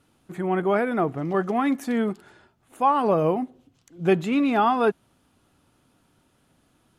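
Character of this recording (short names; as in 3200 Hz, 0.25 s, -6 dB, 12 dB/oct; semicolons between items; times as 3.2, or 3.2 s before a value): noise floor -65 dBFS; spectral tilt -3.5 dB/oct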